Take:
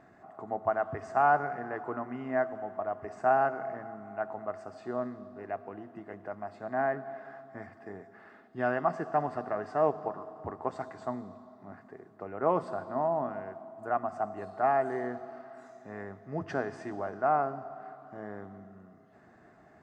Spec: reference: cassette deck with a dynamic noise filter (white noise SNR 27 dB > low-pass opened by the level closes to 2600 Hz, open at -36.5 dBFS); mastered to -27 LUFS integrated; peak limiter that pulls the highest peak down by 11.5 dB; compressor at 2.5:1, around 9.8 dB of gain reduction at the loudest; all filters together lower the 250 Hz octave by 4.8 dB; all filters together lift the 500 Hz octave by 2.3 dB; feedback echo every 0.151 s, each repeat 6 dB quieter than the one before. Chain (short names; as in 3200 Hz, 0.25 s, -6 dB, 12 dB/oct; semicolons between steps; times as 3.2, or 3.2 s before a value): bell 250 Hz -8.5 dB; bell 500 Hz +5 dB; compressor 2.5:1, threshold -34 dBFS; limiter -31.5 dBFS; feedback echo 0.151 s, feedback 50%, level -6 dB; white noise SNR 27 dB; low-pass opened by the level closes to 2600 Hz, open at -36.5 dBFS; gain +14.5 dB